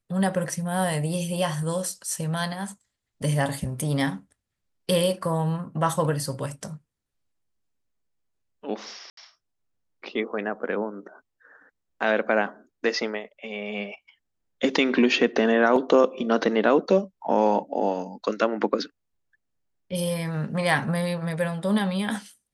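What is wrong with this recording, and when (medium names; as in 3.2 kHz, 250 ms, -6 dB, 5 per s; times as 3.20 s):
9.10–9.17 s: dropout 73 ms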